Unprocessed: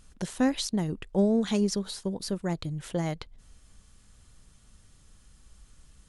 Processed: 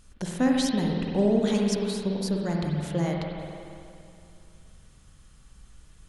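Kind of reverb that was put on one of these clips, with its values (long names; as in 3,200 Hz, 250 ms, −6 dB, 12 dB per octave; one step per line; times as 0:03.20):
spring reverb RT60 2.5 s, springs 47/59 ms, chirp 45 ms, DRR −1 dB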